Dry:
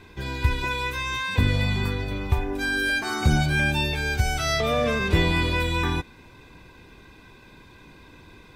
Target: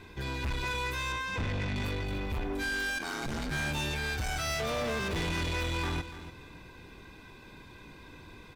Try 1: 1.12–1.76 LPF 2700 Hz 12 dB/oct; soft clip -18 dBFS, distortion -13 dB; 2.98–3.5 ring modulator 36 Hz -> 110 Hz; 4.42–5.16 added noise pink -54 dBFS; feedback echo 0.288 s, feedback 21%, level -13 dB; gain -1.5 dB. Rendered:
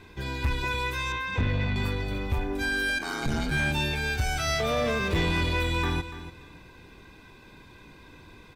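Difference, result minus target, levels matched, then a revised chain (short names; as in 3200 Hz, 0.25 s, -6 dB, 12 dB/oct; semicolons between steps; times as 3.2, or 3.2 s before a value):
soft clip: distortion -7 dB
1.12–1.76 LPF 2700 Hz 12 dB/oct; soft clip -28.5 dBFS, distortion -6 dB; 2.98–3.5 ring modulator 36 Hz -> 110 Hz; 4.42–5.16 added noise pink -54 dBFS; feedback echo 0.288 s, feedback 21%, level -13 dB; gain -1.5 dB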